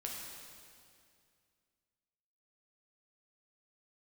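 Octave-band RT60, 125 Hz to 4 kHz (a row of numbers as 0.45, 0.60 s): 2.7, 2.5, 2.4, 2.2, 2.2, 2.1 s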